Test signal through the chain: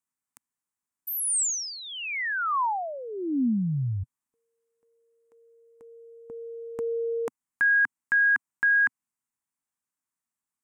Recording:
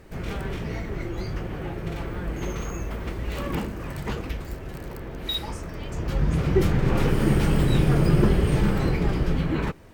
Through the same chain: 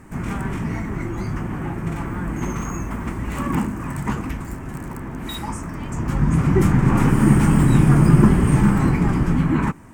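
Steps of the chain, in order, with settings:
octave-band graphic EQ 125/250/500/1,000/2,000/4,000/8,000 Hz +5/+11/−8/+10/+4/−10/+11 dB

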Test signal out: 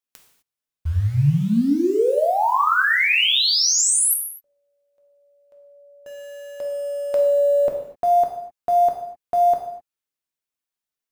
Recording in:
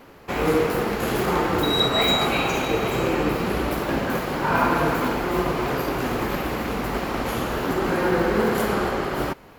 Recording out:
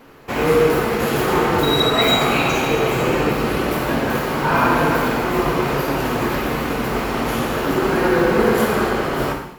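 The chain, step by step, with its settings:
in parallel at −10.5 dB: bit-depth reduction 6 bits, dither none
on the sum: reverb whose tail is shaped and stops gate 280 ms falling, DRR 1 dB

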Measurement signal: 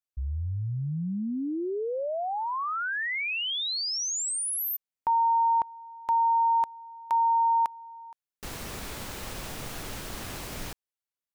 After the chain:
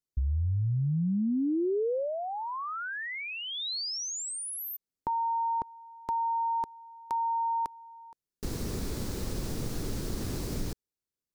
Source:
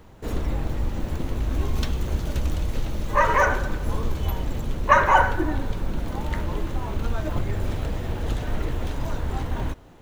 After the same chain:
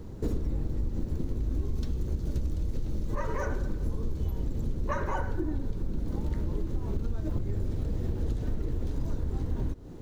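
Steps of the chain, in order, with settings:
flat-topped bell 1,400 Hz −12 dB 2.8 octaves
downward compressor 8 to 1, threshold −34 dBFS
high-shelf EQ 3,700 Hz −10.5 dB
level +8 dB

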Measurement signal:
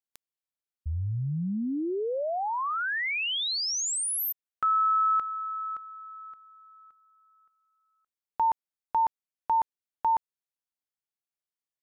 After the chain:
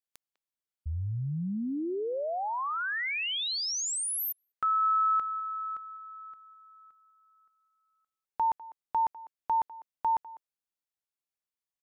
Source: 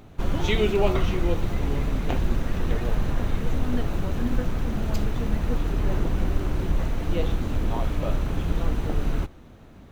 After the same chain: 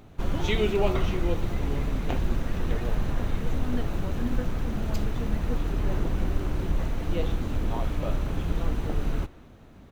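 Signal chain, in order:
far-end echo of a speakerphone 200 ms, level −19 dB
level −2.5 dB

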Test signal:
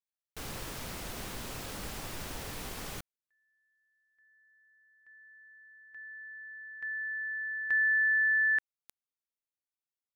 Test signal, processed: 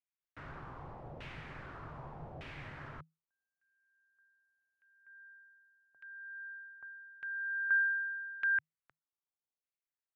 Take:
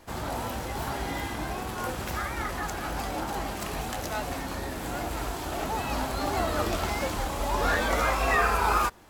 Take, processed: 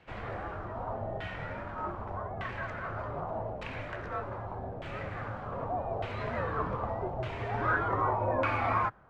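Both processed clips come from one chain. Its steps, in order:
frequency shifter −160 Hz
auto-filter low-pass saw down 0.83 Hz 650–2,700 Hz
level −7 dB

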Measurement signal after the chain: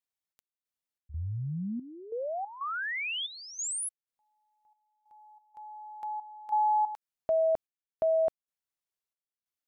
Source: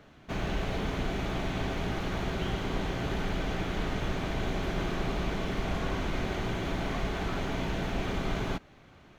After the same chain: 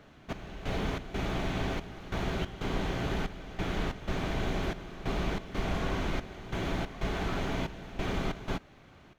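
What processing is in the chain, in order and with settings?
gate pattern "xx..xx.xx" 92 BPM −12 dB

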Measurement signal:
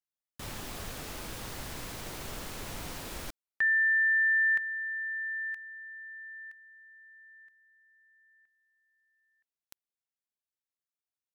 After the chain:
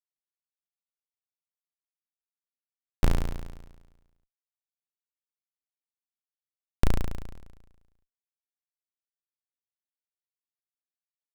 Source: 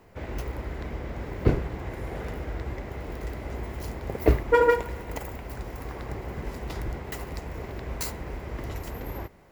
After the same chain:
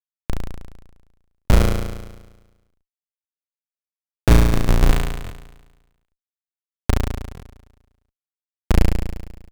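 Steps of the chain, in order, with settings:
wind on the microphone 240 Hz −35 dBFS
RIAA equalisation playback
in parallel at +2 dB: downward compressor 4 to 1, threshold −22 dBFS
on the sum: comparator with hysteresis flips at −2.5 dBFS
on a send: flutter between parallel walls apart 6 metres, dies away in 1.2 s
on the sum: buffer that repeats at 0:01.43/0:05.23/0:07.33, samples 1,024, times 2
level +1.5 dB

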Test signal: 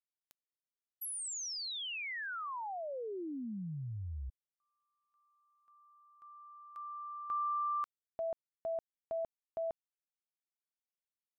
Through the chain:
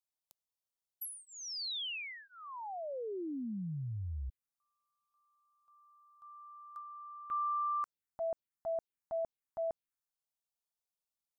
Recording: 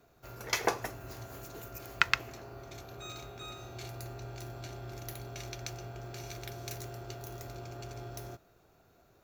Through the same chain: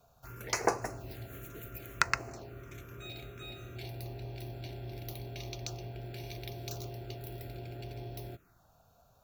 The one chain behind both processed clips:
phaser swept by the level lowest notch 310 Hz, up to 3,400 Hz, full sweep at −35 dBFS
level +2 dB

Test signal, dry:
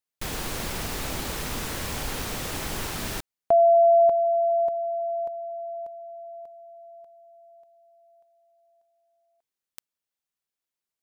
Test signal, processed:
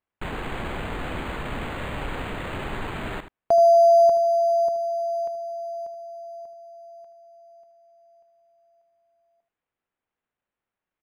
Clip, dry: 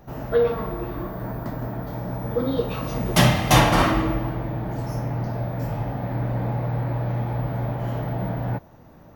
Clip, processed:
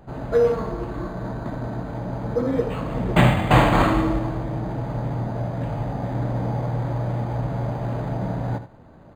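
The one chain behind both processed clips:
single-tap delay 78 ms −12 dB
linearly interpolated sample-rate reduction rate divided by 8×
level +1 dB

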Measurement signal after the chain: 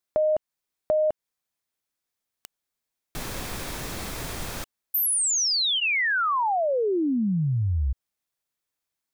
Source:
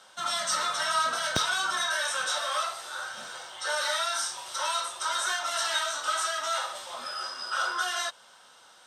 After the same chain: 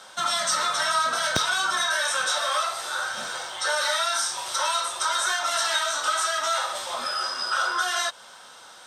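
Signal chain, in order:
notch filter 2,900 Hz, Q 19
downward compressor 2 to 1, threshold −33 dBFS
level +8.5 dB

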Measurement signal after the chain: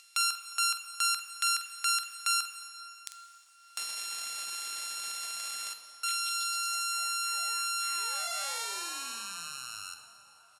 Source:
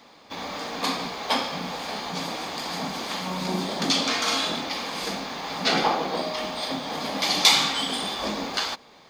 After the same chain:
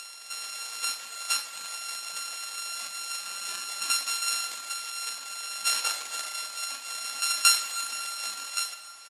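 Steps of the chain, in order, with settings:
samples sorted by size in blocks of 32 samples
meter weighting curve A
reverb reduction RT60 0.68 s
low-pass filter 11,000 Hz 24 dB per octave
upward compression, threshold −28 dBFS
first-order pre-emphasis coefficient 0.97
double-tracking delay 47 ms −11 dB
feedback echo with a band-pass in the loop 360 ms, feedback 85%, band-pass 770 Hz, level −21 dB
dense smooth reverb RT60 3.1 s, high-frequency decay 0.85×, DRR 7.5 dB
level +4 dB

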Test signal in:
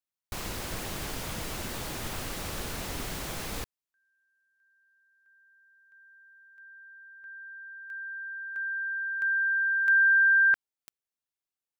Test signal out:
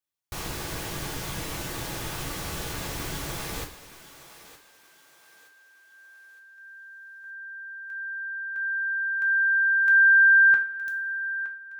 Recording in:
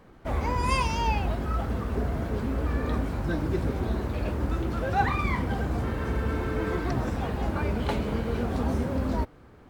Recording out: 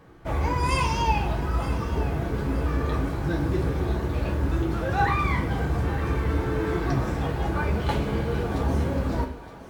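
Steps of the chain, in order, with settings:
on a send: feedback echo with a high-pass in the loop 917 ms, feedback 40%, high-pass 420 Hz, level −14 dB
on the sum: coupled-rooms reverb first 0.29 s, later 1.9 s, from −18 dB, DRR 1.5 dB

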